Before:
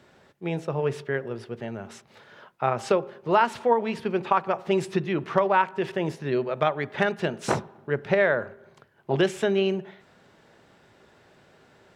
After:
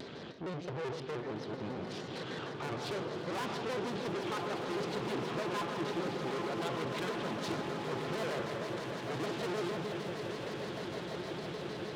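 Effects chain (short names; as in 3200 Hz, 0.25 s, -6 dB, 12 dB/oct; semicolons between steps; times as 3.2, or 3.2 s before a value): band shelf 1200 Hz -9.5 dB 2.5 oct; Schroeder reverb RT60 1.1 s, combs from 29 ms, DRR 10.5 dB; in parallel at -0.5 dB: compressor, threshold -38 dBFS, peak gain reduction 18.5 dB; on the sum: LPF 4400 Hz 24 dB/oct; upward compressor, threshold -31 dBFS; tube stage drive 37 dB, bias 0.6; HPF 210 Hz 6 dB/oct; swelling echo 0.17 s, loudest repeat 8, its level -12 dB; shaped vibrato square 6.5 Hz, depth 160 cents; gain +2 dB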